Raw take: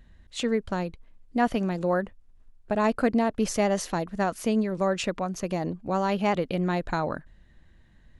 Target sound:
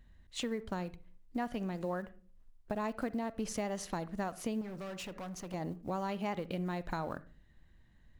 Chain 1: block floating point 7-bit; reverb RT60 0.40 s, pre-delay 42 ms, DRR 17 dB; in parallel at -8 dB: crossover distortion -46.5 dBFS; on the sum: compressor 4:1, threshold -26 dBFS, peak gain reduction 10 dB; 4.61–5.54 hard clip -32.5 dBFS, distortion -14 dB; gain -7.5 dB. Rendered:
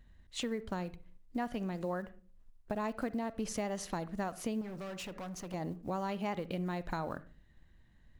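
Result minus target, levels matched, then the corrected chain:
crossover distortion: distortion -6 dB
block floating point 7-bit; reverb RT60 0.40 s, pre-delay 42 ms, DRR 17 dB; in parallel at -8 dB: crossover distortion -39.5 dBFS; on the sum: compressor 4:1, threshold -26 dBFS, peak gain reduction 10 dB; 4.61–5.54 hard clip -32.5 dBFS, distortion -14 dB; gain -7.5 dB

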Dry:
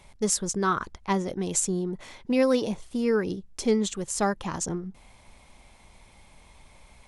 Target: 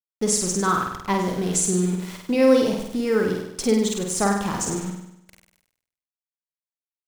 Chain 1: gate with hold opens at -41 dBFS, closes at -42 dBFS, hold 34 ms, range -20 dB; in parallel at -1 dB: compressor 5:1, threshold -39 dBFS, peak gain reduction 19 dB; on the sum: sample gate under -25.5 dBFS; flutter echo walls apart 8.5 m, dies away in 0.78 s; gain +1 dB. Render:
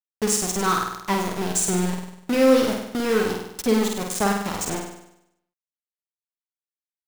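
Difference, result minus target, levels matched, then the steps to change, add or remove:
sample gate: distortion +13 dB
change: sample gate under -37 dBFS

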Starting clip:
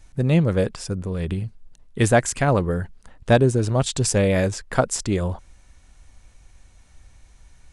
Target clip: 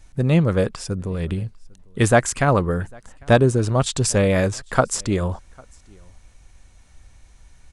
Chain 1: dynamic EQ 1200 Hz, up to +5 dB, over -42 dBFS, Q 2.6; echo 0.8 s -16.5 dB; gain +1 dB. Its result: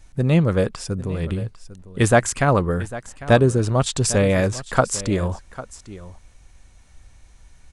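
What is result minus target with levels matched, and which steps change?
echo-to-direct +12 dB
change: echo 0.8 s -28.5 dB

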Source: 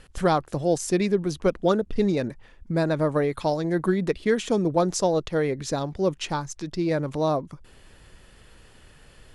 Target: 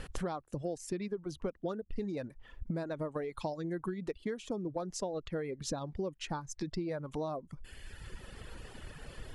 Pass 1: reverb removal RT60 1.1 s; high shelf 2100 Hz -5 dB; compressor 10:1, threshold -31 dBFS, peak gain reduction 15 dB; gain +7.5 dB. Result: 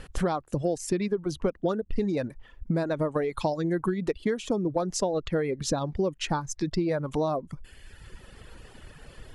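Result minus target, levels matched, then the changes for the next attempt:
compressor: peak gain reduction -10 dB
change: compressor 10:1, threshold -42 dBFS, peak gain reduction 25 dB

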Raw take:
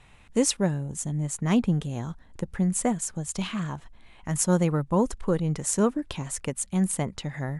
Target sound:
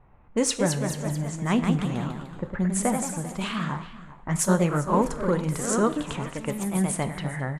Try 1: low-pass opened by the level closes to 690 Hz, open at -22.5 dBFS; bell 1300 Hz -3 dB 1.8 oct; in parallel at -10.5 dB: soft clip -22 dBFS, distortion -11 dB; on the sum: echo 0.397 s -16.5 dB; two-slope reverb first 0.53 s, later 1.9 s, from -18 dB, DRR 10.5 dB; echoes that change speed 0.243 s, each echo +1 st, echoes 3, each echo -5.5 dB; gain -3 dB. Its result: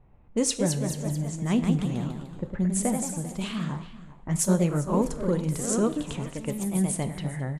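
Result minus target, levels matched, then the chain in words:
1000 Hz band -6.0 dB
low-pass opened by the level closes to 690 Hz, open at -22.5 dBFS; bell 1300 Hz +6.5 dB 1.8 oct; in parallel at -10.5 dB: soft clip -22 dBFS, distortion -9 dB; on the sum: echo 0.397 s -16.5 dB; two-slope reverb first 0.53 s, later 1.9 s, from -18 dB, DRR 10.5 dB; echoes that change speed 0.243 s, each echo +1 st, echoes 3, each echo -5.5 dB; gain -3 dB

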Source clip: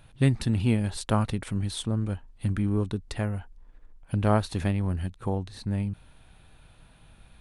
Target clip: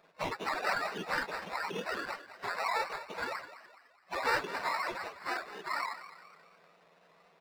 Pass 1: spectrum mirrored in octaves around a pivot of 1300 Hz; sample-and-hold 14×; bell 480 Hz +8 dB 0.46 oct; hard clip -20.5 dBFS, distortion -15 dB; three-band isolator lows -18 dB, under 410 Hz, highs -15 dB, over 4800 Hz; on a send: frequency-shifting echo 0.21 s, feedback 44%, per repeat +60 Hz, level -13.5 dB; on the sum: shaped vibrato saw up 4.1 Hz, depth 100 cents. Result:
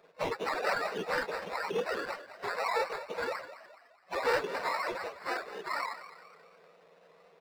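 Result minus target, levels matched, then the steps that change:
500 Hz band +5.0 dB
change: bell 480 Hz -2 dB 0.46 oct

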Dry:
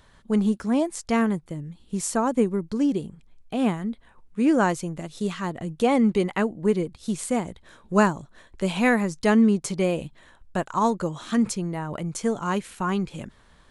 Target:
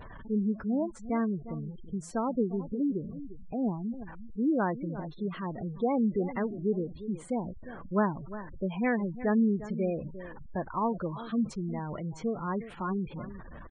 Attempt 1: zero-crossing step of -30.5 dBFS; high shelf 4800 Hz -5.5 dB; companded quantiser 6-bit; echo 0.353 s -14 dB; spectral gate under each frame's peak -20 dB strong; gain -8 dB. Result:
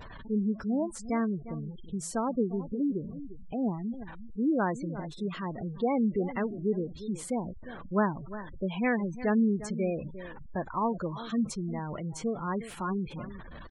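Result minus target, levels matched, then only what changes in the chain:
8000 Hz band +10.0 dB
change: high shelf 4800 Hz -17 dB

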